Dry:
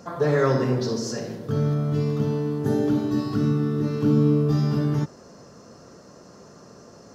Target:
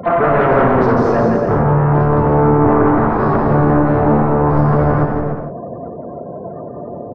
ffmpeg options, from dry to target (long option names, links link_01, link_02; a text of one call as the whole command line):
ffmpeg -i in.wav -filter_complex "[0:a]afftfilt=real='re*gte(hypot(re,im),0.0112)':imag='im*gte(hypot(re,im),0.0112)':win_size=1024:overlap=0.75,equalizer=frequency=680:width=4.2:gain=10.5,bandreject=frequency=68.9:width_type=h:width=4,bandreject=frequency=137.8:width_type=h:width=4,bandreject=frequency=206.7:width_type=h:width=4,bandreject=frequency=275.6:width_type=h:width=4,bandreject=frequency=344.5:width_type=h:width=4,bandreject=frequency=413.4:width_type=h:width=4,bandreject=frequency=482.3:width_type=h:width=4,bandreject=frequency=551.2:width_type=h:width=4,bandreject=frequency=620.1:width_type=h:width=4,alimiter=limit=-18.5dB:level=0:latency=1:release=29,aresample=16000,aeval=exprs='0.126*sin(PI/2*2*val(0)/0.126)':channel_layout=same,aresample=44100,lowpass=frequency=1300:width_type=q:width=1.5,asplit=4[link_01][link_02][link_03][link_04];[link_02]asetrate=22050,aresample=44100,atempo=2,volume=-16dB[link_05];[link_03]asetrate=33038,aresample=44100,atempo=1.33484,volume=-14dB[link_06];[link_04]asetrate=66075,aresample=44100,atempo=0.66742,volume=-17dB[link_07];[link_01][link_05][link_06][link_07]amix=inputs=4:normalize=0,aeval=exprs='val(0)+0.00891*sin(2*PI*710*n/s)':channel_layout=same,aecho=1:1:170|289|372.3|430.6|471.4:0.631|0.398|0.251|0.158|0.1,volume=6dB" out.wav